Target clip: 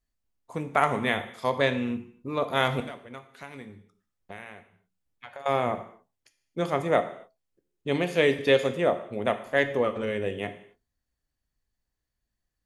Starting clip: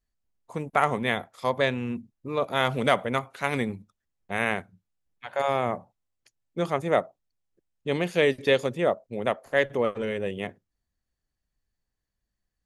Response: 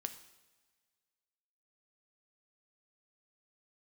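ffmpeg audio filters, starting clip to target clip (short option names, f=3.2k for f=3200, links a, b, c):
-filter_complex "[0:a]asettb=1/sr,asplit=3[a][b][c];[a]atrim=end=2.804[d];[b]atrim=start=2.8:end=5.46,asetpts=PTS-STARTPTS,afade=t=in:d=0.004:c=qsin,afade=t=out:st=2.656:d=0.004:c=qsin,acompressor=threshold=-41dB:ratio=5[e];[c]atrim=start=5.456[f];[d][e]acrossfade=d=0.004:c1=hsin:c2=qsin[g];[g][f]acrossfade=d=0.004:c1=qsin:c2=hsin[h];[1:a]atrim=start_sample=2205,afade=t=out:st=0.36:d=0.01,atrim=end_sample=16317,asetrate=48510,aresample=44100[i];[h][i]afir=irnorm=-1:irlink=0,volume=3dB"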